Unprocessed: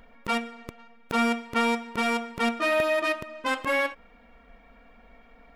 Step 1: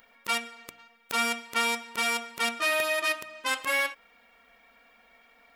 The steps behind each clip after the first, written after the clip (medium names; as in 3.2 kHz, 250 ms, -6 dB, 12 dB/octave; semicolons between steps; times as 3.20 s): tilt EQ +4 dB/octave; de-hum 59.97 Hz, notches 5; trim -3.5 dB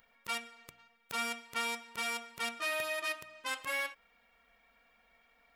resonant low shelf 180 Hz +6.5 dB, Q 1.5; trim -8.5 dB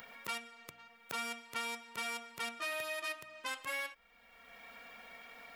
three bands compressed up and down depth 70%; trim -3.5 dB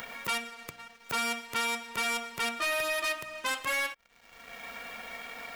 waveshaping leveller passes 3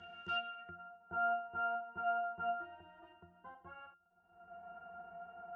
low-pass sweep 6.4 kHz -> 1 kHz, 0.27–0.87 s; pitch-class resonator F, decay 0.24 s; trim +3.5 dB